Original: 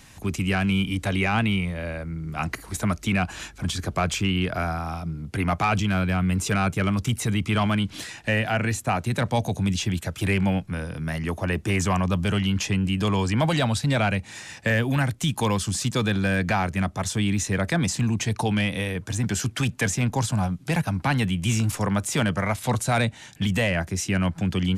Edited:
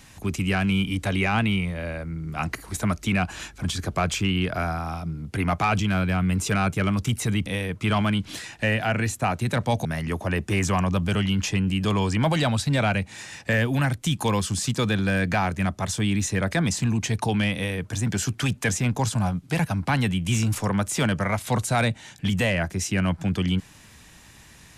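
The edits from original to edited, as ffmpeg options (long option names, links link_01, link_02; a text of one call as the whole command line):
ffmpeg -i in.wav -filter_complex "[0:a]asplit=4[link_01][link_02][link_03][link_04];[link_01]atrim=end=7.462[link_05];[link_02]atrim=start=18.718:end=19.072[link_06];[link_03]atrim=start=7.458:end=9.502[link_07];[link_04]atrim=start=11.018[link_08];[link_05][link_06]acrossfade=duration=0.004:curve1=hsin:curve2=hsin[link_09];[link_09][link_07]acrossfade=duration=0.004:curve1=hsin:curve2=hsin[link_10];[link_10][link_08]acrossfade=duration=0.004:curve1=hsin:curve2=hsin" out.wav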